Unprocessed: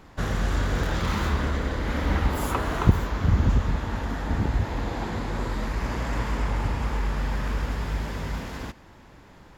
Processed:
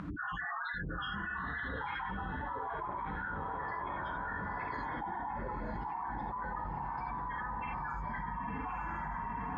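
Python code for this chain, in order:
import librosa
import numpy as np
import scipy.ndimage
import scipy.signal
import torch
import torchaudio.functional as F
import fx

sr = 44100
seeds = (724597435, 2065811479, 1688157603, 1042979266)

y = fx.spec_dropout(x, sr, seeds[0], share_pct=49)
y = fx.low_shelf(y, sr, hz=110.0, db=4.5)
y = fx.spec_topn(y, sr, count=8)
y = 10.0 ** (-19.5 / 20.0) * np.tanh(y / 10.0 ** (-19.5 / 20.0))
y = fx.wah_lfo(y, sr, hz=0.31, low_hz=720.0, high_hz=2300.0, q=3.1)
y = fx.echo_diffused(y, sr, ms=966, feedback_pct=44, wet_db=-5)
y = fx.rev_gated(y, sr, seeds[1], gate_ms=110, shape='flat', drr_db=-1.5)
y = fx.env_flatten(y, sr, amount_pct=100)
y = y * 10.0 ** (-1.5 / 20.0)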